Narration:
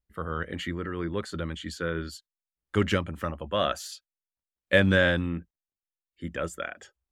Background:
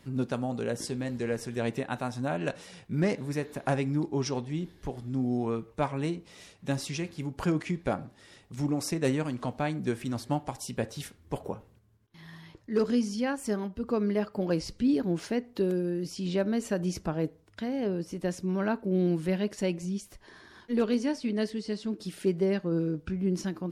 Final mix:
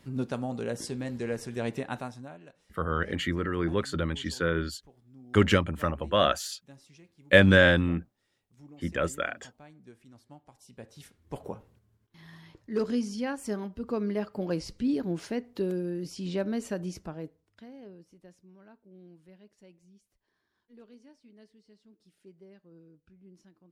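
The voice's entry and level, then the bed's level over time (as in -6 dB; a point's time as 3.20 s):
2.60 s, +3.0 dB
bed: 1.97 s -1.5 dB
2.49 s -22 dB
10.42 s -22 dB
11.46 s -2.5 dB
16.65 s -2.5 dB
18.57 s -26.5 dB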